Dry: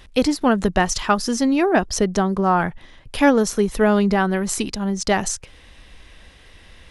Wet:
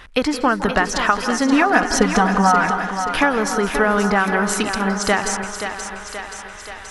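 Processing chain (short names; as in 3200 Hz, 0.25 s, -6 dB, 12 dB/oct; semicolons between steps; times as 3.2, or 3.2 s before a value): bell 1400 Hz +13 dB 1.7 oct; compressor, threshold -14 dBFS, peak gain reduction 11.5 dB; 1.52–2.65 comb 4.1 ms, depth 93%; thinning echo 0.528 s, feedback 65%, high-pass 270 Hz, level -8 dB; on a send at -10 dB: reverb RT60 0.55 s, pre-delay 0.155 s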